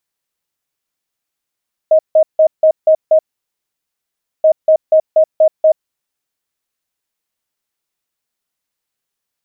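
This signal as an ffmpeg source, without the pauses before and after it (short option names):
-f lavfi -i "aevalsrc='0.562*sin(2*PI*629*t)*clip(min(mod(mod(t,2.53),0.24),0.08-mod(mod(t,2.53),0.24))/0.005,0,1)*lt(mod(t,2.53),1.44)':d=5.06:s=44100"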